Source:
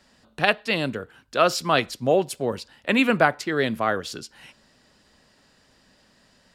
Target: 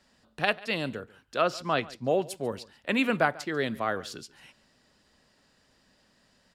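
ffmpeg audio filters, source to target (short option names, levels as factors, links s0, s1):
-filter_complex "[0:a]asettb=1/sr,asplit=3[s0][s1][s2];[s0]atrim=end=1.414[s3];[s1]atrim=start=1.41:end=2.08,asetpts=PTS-STARTPTS,afade=t=in:d=0.004:c=qsin,afade=t=out:st=0.666:d=0.004:c=qsin,aemphasis=mode=reproduction:type=50kf[s4];[s2]atrim=start=2.076[s5];[s3][s4]acrossfade=d=0.004:c1=hsin:c2=qsin[s6];[s6][s5]acrossfade=d=0.004:c1=qsin:c2=hsin,asplit=2[s7][s8];[s8]aecho=0:1:142:0.0891[s9];[s7][s9]amix=inputs=2:normalize=0,volume=0.501"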